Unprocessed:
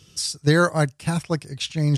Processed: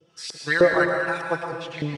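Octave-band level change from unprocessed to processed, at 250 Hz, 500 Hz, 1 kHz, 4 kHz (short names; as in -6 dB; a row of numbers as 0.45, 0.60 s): -5.0, +3.0, 0.0, -6.5 dB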